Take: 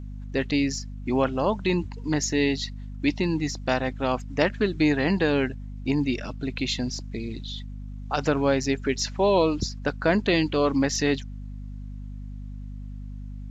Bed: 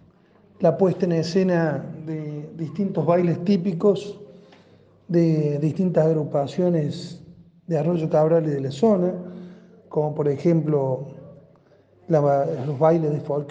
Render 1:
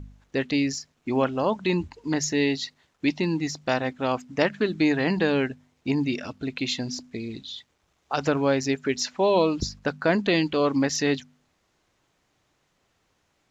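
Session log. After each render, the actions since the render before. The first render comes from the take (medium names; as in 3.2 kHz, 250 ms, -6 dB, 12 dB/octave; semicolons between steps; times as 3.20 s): de-hum 50 Hz, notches 5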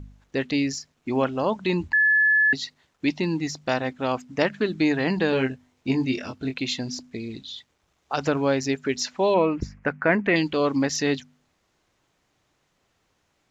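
1.93–2.53 s: bleep 1.72 kHz -15.5 dBFS; 5.30–6.54 s: doubling 23 ms -5 dB; 9.34–10.36 s: resonant high shelf 2.9 kHz -11 dB, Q 3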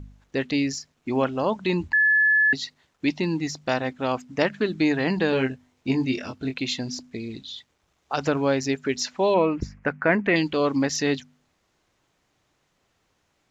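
no audible change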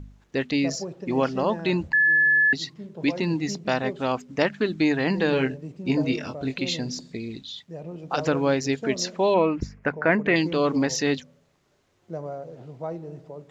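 add bed -15.5 dB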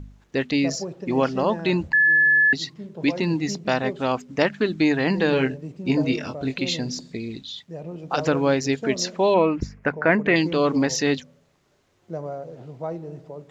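trim +2 dB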